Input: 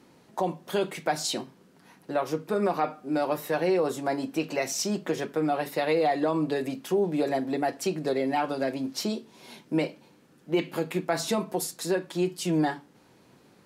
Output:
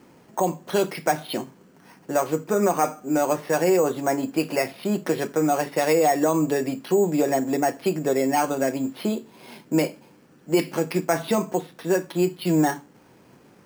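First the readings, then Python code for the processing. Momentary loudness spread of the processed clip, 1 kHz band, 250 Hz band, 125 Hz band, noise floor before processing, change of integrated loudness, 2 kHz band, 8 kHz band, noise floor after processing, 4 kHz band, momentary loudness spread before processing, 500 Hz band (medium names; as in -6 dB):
7 LU, +5.0 dB, +5.0 dB, +5.0 dB, -58 dBFS, +5.0 dB, +4.0 dB, +4.0 dB, -54 dBFS, 0.0 dB, 6 LU, +5.0 dB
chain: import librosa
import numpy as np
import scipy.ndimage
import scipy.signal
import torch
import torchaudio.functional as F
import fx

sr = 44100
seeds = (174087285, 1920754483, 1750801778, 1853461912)

y = np.repeat(scipy.signal.resample_poly(x, 1, 6), 6)[:len(x)]
y = y * librosa.db_to_amplitude(5.0)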